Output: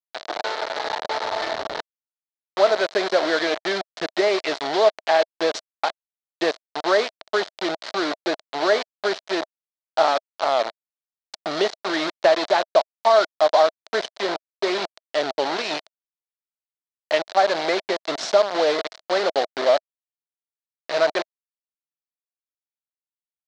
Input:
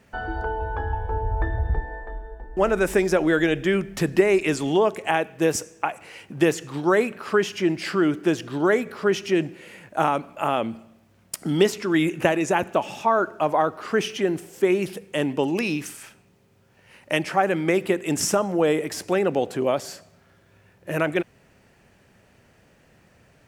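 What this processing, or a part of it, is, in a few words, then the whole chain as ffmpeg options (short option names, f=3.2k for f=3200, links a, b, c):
hand-held game console: -af "acrusher=bits=3:mix=0:aa=0.000001,highpass=480,equalizer=f=640:t=q:w=4:g=10,equalizer=f=2.6k:t=q:w=4:g=-6,equalizer=f=4.1k:t=q:w=4:g=6,lowpass=f=5.1k:w=0.5412,lowpass=f=5.1k:w=1.3066"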